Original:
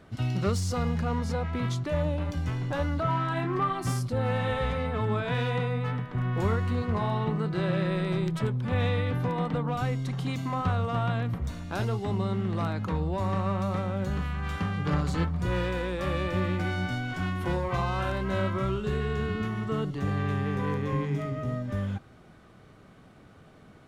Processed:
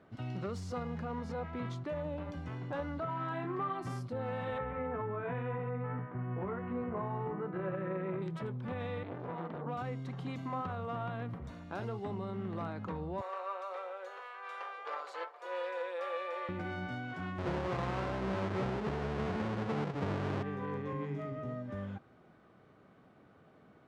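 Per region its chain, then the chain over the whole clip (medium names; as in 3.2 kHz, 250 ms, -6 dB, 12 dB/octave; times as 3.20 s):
4.58–8.22 s: low-pass 2.3 kHz 24 dB/octave + doubling 16 ms -4.5 dB
9.03–9.66 s: distance through air 76 m + hum notches 60/120/180/240/300/360/420/480/540 Hz + transformer saturation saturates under 660 Hz
13.21–16.49 s: steep high-pass 450 Hz 48 dB/octave + comb 5.9 ms, depth 47%
17.38–20.43 s: square wave that keeps the level + distance through air 74 m
whole clip: low-pass 1.4 kHz 6 dB/octave; peak limiter -22 dBFS; high-pass 250 Hz 6 dB/octave; trim -4 dB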